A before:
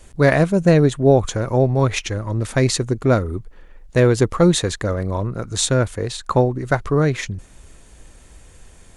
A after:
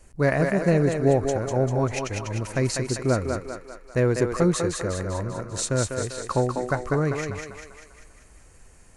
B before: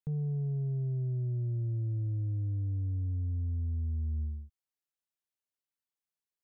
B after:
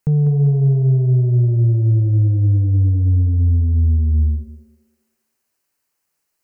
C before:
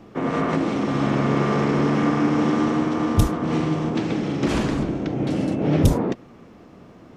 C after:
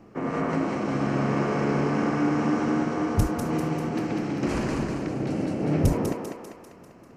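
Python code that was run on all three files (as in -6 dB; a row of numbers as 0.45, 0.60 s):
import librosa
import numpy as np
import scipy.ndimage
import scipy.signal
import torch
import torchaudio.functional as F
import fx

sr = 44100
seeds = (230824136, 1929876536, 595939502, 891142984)

p1 = fx.peak_eq(x, sr, hz=3500.0, db=-12.5, octaves=0.3)
p2 = p1 + fx.echo_thinned(p1, sr, ms=197, feedback_pct=56, hz=370.0, wet_db=-3.5, dry=0)
y = librosa.util.normalize(p2) * 10.0 ** (-9 / 20.0)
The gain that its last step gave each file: -7.0, +18.0, -5.0 dB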